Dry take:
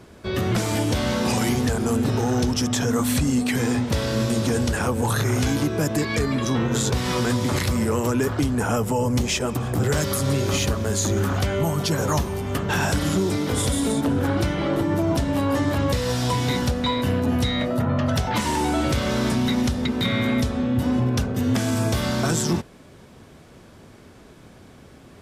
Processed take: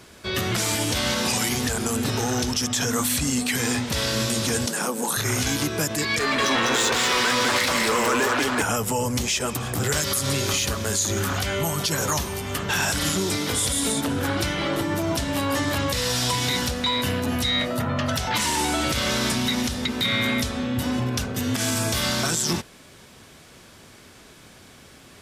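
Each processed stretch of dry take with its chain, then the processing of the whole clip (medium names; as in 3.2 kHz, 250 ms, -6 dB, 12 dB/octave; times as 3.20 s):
4.66–5.17 s: steep high-pass 150 Hz 96 dB/octave + peaking EQ 2.4 kHz -6.5 dB 1.8 oct
6.19–8.62 s: bass shelf 160 Hz -11 dB + overdrive pedal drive 19 dB, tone 1.8 kHz, clips at -13 dBFS + delay 199 ms -3.5 dB
whole clip: tilt shelf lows -6.5 dB, about 1.3 kHz; peak limiter -15.5 dBFS; trim +2 dB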